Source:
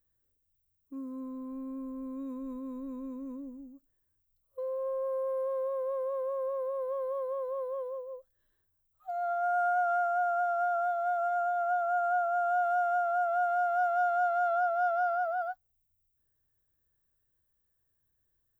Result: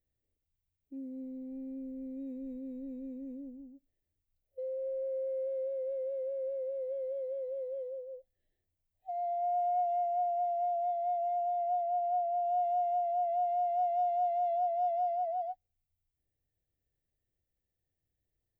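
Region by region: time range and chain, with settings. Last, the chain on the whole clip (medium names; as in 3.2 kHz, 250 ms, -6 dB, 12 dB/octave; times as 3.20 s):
11.83–12.45 s: high-pass 110 Hz 6 dB/octave + distance through air 58 m
whole clip: elliptic band-stop 780–1900 Hz, stop band 50 dB; tone controls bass -1 dB, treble -12 dB; trim -1.5 dB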